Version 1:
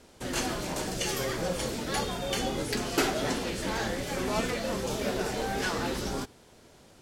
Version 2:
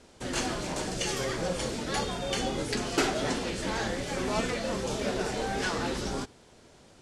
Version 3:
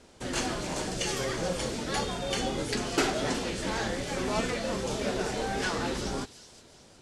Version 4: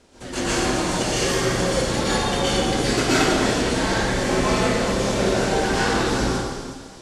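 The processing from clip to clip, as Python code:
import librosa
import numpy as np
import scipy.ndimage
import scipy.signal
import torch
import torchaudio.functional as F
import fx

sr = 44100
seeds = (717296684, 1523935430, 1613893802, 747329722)

y1 = scipy.signal.sosfilt(scipy.signal.butter(4, 10000.0, 'lowpass', fs=sr, output='sos'), x)
y2 = fx.echo_wet_highpass(y1, sr, ms=365, feedback_pct=41, hz=3900.0, wet_db=-11)
y3 = fx.rev_plate(y2, sr, seeds[0], rt60_s=1.7, hf_ratio=0.75, predelay_ms=105, drr_db=-9.5)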